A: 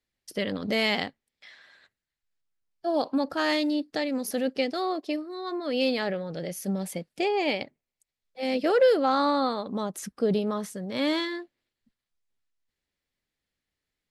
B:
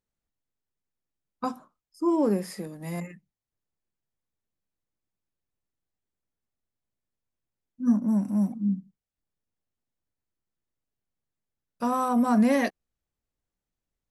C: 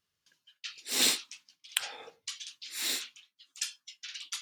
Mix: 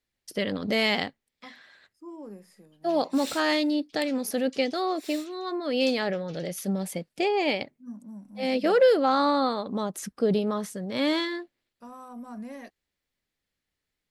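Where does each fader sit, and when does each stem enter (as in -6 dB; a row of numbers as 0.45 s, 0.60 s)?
+1.0 dB, -18.5 dB, -12.0 dB; 0.00 s, 0.00 s, 2.25 s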